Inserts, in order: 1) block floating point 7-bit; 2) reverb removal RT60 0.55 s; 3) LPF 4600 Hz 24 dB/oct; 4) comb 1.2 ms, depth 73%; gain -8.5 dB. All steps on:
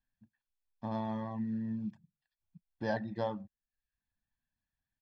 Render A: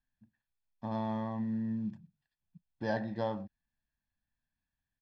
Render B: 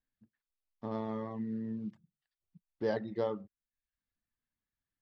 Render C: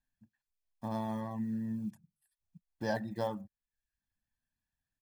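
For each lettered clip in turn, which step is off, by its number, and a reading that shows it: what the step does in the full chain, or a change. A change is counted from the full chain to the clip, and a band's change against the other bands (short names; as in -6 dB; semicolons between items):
2, loudness change +1.5 LU; 4, 500 Hz band +6.5 dB; 3, 4 kHz band +2.0 dB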